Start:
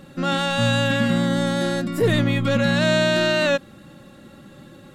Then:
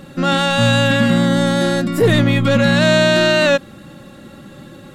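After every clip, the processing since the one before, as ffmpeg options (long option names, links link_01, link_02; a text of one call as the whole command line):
ffmpeg -i in.wav -af "acontrast=67" out.wav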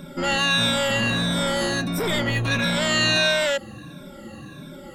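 ffmpeg -i in.wav -filter_complex "[0:a]afftfilt=real='re*pow(10,18/40*sin(2*PI*(1.6*log(max(b,1)*sr/1024/100)/log(2)-(-1.5)*(pts-256)/sr)))':imag='im*pow(10,18/40*sin(2*PI*(1.6*log(max(b,1)*sr/1024/100)/log(2)-(-1.5)*(pts-256)/sr)))':win_size=1024:overlap=0.75,acrossover=split=1700[link_01][link_02];[link_01]asoftclip=type=tanh:threshold=-18.5dB[link_03];[link_03][link_02]amix=inputs=2:normalize=0,volume=-4.5dB" out.wav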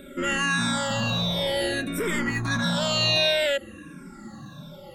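ffmpeg -i in.wav -filter_complex "[0:a]asplit=2[link_01][link_02];[link_02]afreqshift=-0.56[link_03];[link_01][link_03]amix=inputs=2:normalize=1" out.wav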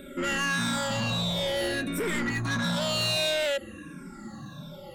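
ffmpeg -i in.wav -af "asoftclip=type=tanh:threshold=-23dB" out.wav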